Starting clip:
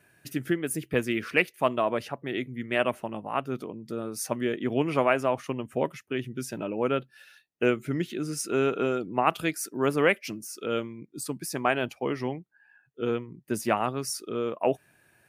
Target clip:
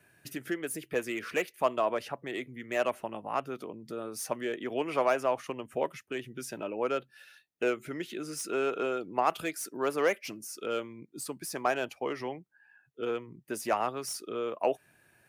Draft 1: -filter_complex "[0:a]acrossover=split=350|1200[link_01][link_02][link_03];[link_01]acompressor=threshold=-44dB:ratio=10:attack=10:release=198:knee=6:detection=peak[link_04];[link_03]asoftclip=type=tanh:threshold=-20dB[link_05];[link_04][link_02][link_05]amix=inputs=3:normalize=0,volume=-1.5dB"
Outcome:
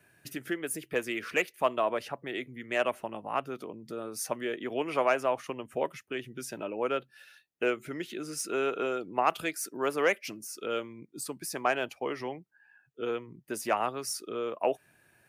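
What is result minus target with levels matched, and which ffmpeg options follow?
soft clipping: distortion −7 dB
-filter_complex "[0:a]acrossover=split=350|1200[link_01][link_02][link_03];[link_01]acompressor=threshold=-44dB:ratio=10:attack=10:release=198:knee=6:detection=peak[link_04];[link_03]asoftclip=type=tanh:threshold=-29.5dB[link_05];[link_04][link_02][link_05]amix=inputs=3:normalize=0,volume=-1.5dB"

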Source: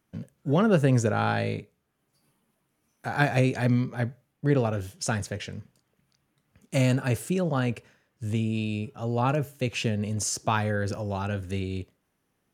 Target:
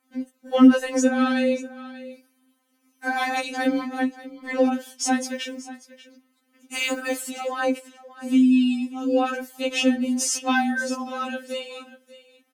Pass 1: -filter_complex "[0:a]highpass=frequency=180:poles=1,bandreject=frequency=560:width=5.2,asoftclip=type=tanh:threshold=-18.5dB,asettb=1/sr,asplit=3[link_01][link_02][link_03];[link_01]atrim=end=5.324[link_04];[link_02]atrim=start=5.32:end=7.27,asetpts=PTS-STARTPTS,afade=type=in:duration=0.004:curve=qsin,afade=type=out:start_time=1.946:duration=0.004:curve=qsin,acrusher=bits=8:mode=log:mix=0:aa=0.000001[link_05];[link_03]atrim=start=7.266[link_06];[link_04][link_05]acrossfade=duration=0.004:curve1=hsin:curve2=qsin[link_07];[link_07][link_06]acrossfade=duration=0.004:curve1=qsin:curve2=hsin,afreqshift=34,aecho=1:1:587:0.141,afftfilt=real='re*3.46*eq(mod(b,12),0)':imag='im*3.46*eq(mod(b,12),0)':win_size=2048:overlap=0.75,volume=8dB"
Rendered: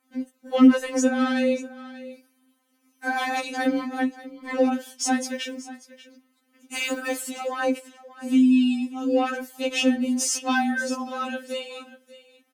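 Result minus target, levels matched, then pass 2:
soft clipping: distortion +11 dB
-filter_complex "[0:a]highpass=frequency=180:poles=1,bandreject=frequency=560:width=5.2,asoftclip=type=tanh:threshold=-10.5dB,asettb=1/sr,asplit=3[link_01][link_02][link_03];[link_01]atrim=end=5.324[link_04];[link_02]atrim=start=5.32:end=7.27,asetpts=PTS-STARTPTS,afade=type=in:duration=0.004:curve=qsin,afade=type=out:start_time=1.946:duration=0.004:curve=qsin,acrusher=bits=8:mode=log:mix=0:aa=0.000001[link_05];[link_03]atrim=start=7.266[link_06];[link_04][link_05]acrossfade=duration=0.004:curve1=hsin:curve2=qsin[link_07];[link_07][link_06]acrossfade=duration=0.004:curve1=qsin:curve2=hsin,afreqshift=34,aecho=1:1:587:0.141,afftfilt=real='re*3.46*eq(mod(b,12),0)':imag='im*3.46*eq(mod(b,12),0)':win_size=2048:overlap=0.75,volume=8dB"

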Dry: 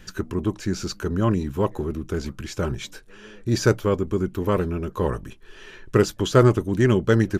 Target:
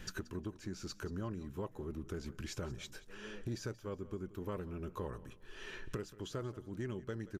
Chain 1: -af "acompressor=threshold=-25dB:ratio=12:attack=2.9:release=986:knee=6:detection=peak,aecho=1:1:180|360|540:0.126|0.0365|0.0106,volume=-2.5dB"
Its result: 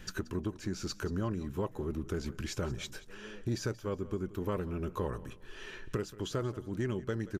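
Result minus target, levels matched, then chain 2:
downward compressor: peak gain reduction −7 dB
-af "acompressor=threshold=-32.5dB:ratio=12:attack=2.9:release=986:knee=6:detection=peak,aecho=1:1:180|360|540:0.126|0.0365|0.0106,volume=-2.5dB"

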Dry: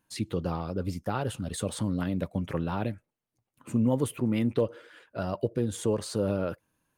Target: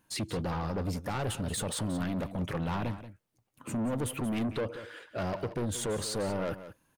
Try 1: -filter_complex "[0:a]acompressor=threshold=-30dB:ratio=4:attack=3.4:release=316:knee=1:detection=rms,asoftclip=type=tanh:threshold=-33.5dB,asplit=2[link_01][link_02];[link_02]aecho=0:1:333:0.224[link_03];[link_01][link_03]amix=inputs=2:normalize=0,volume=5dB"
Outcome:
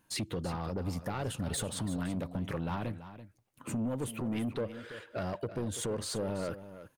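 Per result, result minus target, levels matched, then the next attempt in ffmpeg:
echo 152 ms late; downward compressor: peak gain reduction +6 dB
-filter_complex "[0:a]acompressor=threshold=-30dB:ratio=4:attack=3.4:release=316:knee=1:detection=rms,asoftclip=type=tanh:threshold=-33.5dB,asplit=2[link_01][link_02];[link_02]aecho=0:1:181:0.224[link_03];[link_01][link_03]amix=inputs=2:normalize=0,volume=5dB"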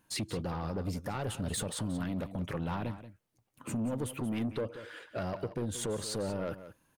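downward compressor: peak gain reduction +6 dB
-filter_complex "[0:a]acompressor=threshold=-22dB:ratio=4:attack=3.4:release=316:knee=1:detection=rms,asoftclip=type=tanh:threshold=-33.5dB,asplit=2[link_01][link_02];[link_02]aecho=0:1:181:0.224[link_03];[link_01][link_03]amix=inputs=2:normalize=0,volume=5dB"

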